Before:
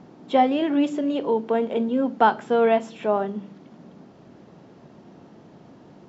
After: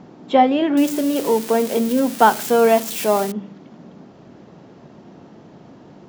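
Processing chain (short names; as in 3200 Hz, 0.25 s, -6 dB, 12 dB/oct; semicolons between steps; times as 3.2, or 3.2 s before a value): 0.77–3.32 switching spikes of -21 dBFS; gain +4.5 dB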